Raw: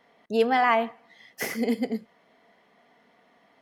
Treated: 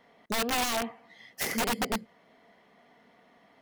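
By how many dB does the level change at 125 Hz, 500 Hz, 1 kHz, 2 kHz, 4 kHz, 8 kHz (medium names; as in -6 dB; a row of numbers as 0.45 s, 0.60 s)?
+1.0 dB, -9.0 dB, -7.5 dB, -3.5 dB, +5.0 dB, +9.0 dB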